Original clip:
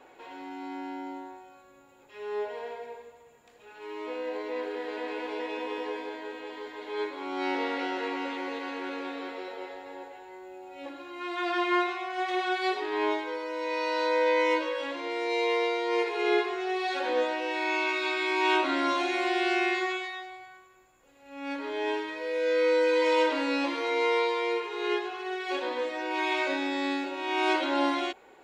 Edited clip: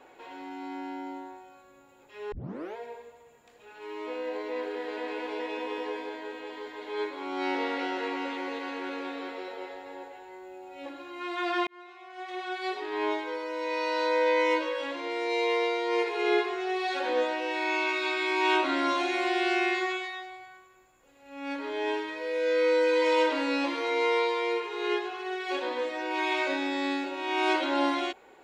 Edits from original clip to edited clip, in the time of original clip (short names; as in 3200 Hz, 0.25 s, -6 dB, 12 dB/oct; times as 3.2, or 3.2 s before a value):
2.32 tape start 0.44 s
11.67–13.33 fade in